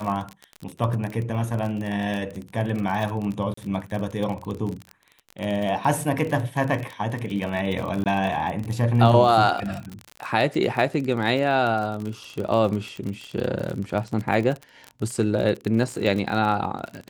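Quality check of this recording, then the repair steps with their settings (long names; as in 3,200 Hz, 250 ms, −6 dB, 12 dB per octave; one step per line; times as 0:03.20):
surface crackle 36 per second −27 dBFS
0:03.54–0:03.57: drop-out 34 ms
0:08.04–0:08.06: drop-out 18 ms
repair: click removal
repair the gap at 0:03.54, 34 ms
repair the gap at 0:08.04, 18 ms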